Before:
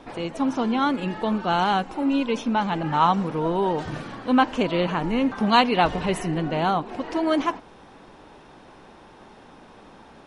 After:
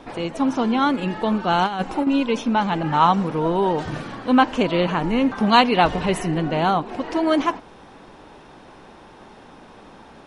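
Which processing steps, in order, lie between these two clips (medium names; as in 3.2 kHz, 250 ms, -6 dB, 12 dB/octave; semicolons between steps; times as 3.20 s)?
1.66–2.07 s: compressor with a negative ratio -25 dBFS, ratio -0.5; trim +3 dB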